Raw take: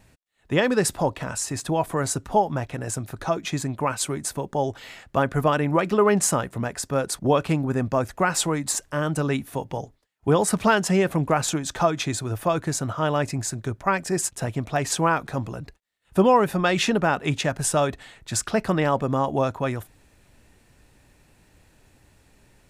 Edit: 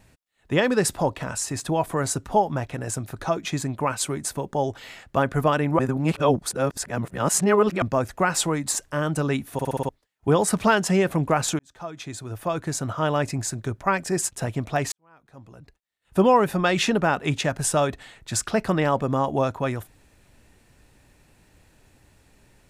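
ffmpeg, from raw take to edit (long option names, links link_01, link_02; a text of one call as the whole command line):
ffmpeg -i in.wav -filter_complex "[0:a]asplit=11[link_01][link_02][link_03][link_04][link_05][link_06][link_07][link_08][link_09][link_10][link_11];[link_01]atrim=end=5.792[link_12];[link_02]atrim=start=5.788:end=7.822,asetpts=PTS-STARTPTS,areverse[link_13];[link_03]atrim=start=7.818:end=9.592[link_14];[link_04]atrim=start=9.528:end=9.592[link_15];[link_05]atrim=start=9.528:end=9.592[link_16];[link_06]atrim=start=9.528:end=9.592[link_17];[link_07]atrim=start=9.528:end=9.592[link_18];[link_08]atrim=start=9.528:end=9.592[link_19];[link_09]atrim=start=9.888:end=11.59,asetpts=PTS-STARTPTS,afade=type=out:start_time=1.698:duration=0.004:curve=hsin[link_20];[link_10]atrim=start=11.59:end=14.92,asetpts=PTS-STARTPTS,afade=type=in:duration=1.39,afade=type=out:start_time=3.326:duration=0.004:curve=hsin[link_21];[link_11]atrim=start=14.92,asetpts=PTS-STARTPTS,afade=type=in:duration=1.32:curve=qua[link_22];[link_12][link_13]acrossfade=duration=0.004:curve1=hsin:curve2=hsin[link_23];[link_23][link_14]acrossfade=duration=0.004:curve1=hsin:curve2=hsin[link_24];[link_24][link_15]acrossfade=duration=0.004:curve1=hsin:curve2=hsin[link_25];[link_25][link_16]acrossfade=duration=0.004:curve1=hsin:curve2=hsin[link_26];[link_26][link_17]acrossfade=duration=0.004:curve1=hsin:curve2=hsin[link_27];[link_27][link_18]acrossfade=duration=0.004:curve1=hsin:curve2=hsin[link_28];[link_28][link_19]acrossfade=duration=0.004:curve1=hsin:curve2=hsin[link_29];[link_20][link_21][link_22]concat=n=3:v=0:a=1[link_30];[link_29][link_30]acrossfade=duration=0.004:curve1=hsin:curve2=hsin" out.wav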